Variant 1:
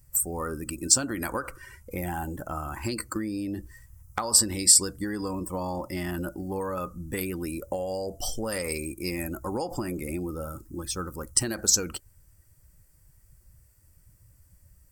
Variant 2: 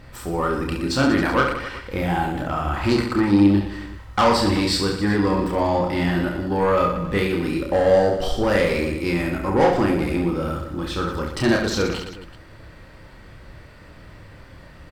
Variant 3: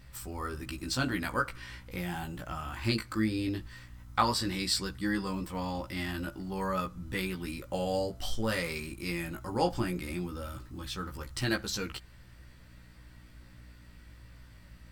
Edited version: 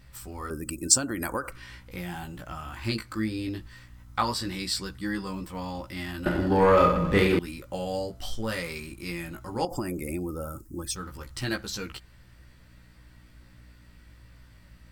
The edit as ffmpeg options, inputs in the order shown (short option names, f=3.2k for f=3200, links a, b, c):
-filter_complex "[0:a]asplit=2[a][b];[2:a]asplit=4[c][d][e][f];[c]atrim=end=0.502[g];[a]atrim=start=0.498:end=1.522[h];[d]atrim=start=1.518:end=6.262[i];[1:a]atrim=start=6.258:end=7.392[j];[e]atrim=start=7.388:end=9.652[k];[b]atrim=start=9.648:end=10.962[l];[f]atrim=start=10.958[m];[g][h]acrossfade=d=0.004:c1=hsin:c2=hsin[n];[n][i]acrossfade=d=0.004:c1=hsin:c2=hsin[o];[o][j]acrossfade=d=0.004:c1=hsin:c2=hsin[p];[p][k]acrossfade=d=0.004:c1=hsin:c2=hsin[q];[q][l]acrossfade=d=0.004:c1=hsin:c2=hsin[r];[r][m]acrossfade=d=0.004:c1=hsin:c2=hsin"